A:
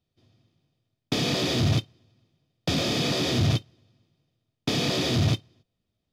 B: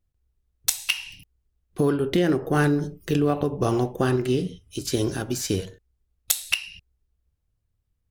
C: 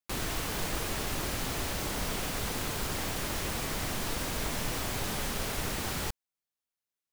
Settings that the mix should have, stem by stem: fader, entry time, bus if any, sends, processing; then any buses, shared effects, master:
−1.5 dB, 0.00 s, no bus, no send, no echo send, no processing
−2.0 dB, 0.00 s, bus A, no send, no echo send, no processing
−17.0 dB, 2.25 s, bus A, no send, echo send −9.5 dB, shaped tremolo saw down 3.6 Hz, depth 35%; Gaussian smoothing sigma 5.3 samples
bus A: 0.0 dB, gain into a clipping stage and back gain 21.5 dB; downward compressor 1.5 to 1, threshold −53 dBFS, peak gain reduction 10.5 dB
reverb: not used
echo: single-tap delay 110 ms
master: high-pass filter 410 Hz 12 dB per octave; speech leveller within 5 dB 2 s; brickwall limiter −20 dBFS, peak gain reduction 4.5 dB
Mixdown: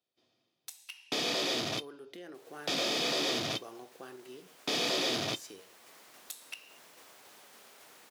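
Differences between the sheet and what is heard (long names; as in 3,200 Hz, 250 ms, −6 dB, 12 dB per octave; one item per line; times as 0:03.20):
stem B −2.0 dB → −12.0 dB
stem C: missing Gaussian smoothing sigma 5.3 samples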